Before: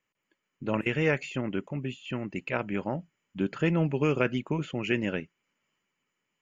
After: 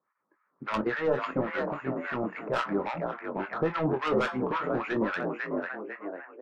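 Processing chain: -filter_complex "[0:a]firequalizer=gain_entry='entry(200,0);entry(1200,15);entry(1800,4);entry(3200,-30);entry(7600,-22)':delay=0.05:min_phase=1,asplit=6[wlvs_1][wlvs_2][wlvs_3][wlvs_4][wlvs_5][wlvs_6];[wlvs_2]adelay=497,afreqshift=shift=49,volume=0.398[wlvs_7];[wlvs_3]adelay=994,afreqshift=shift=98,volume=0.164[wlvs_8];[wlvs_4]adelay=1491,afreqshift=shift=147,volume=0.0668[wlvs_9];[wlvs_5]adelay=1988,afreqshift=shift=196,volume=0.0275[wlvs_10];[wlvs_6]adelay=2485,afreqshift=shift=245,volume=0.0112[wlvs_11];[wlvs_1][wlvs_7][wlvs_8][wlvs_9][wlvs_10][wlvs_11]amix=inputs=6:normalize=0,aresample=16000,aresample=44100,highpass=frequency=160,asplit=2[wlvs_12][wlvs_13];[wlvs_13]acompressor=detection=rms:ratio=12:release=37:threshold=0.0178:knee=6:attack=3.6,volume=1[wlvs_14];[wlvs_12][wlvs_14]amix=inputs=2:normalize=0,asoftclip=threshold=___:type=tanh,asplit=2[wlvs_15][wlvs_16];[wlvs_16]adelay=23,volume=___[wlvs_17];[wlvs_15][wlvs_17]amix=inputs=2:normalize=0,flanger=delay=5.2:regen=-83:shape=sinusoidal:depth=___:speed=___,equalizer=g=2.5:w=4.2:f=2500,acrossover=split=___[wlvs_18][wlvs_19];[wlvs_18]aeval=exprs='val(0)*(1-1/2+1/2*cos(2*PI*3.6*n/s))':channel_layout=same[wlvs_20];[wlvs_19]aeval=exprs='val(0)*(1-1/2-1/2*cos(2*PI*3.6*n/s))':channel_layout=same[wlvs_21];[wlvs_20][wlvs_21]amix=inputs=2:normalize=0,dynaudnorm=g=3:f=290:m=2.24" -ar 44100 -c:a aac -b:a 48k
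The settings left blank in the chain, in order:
0.106, 0.355, 5, 0.35, 950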